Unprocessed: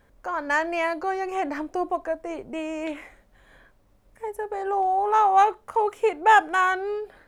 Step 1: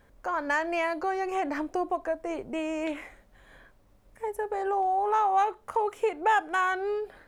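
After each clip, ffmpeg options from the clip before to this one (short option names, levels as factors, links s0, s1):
-af "acompressor=threshold=0.0501:ratio=2"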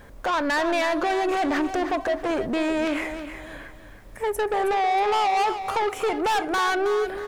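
-filter_complex "[0:a]asplit=2[s0][s1];[s1]alimiter=limit=0.0631:level=0:latency=1:release=91,volume=1.19[s2];[s0][s2]amix=inputs=2:normalize=0,asoftclip=type=tanh:threshold=0.0447,aecho=1:1:319|638|957|1276:0.316|0.101|0.0324|0.0104,volume=2.11"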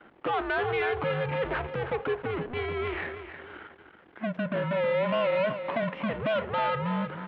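-af "aeval=exprs='if(lt(val(0),0),0.251*val(0),val(0))':c=same,highpass=f=420:t=q:w=0.5412,highpass=f=420:t=q:w=1.307,lowpass=f=3400:t=q:w=0.5176,lowpass=f=3400:t=q:w=0.7071,lowpass=f=3400:t=q:w=1.932,afreqshift=-230"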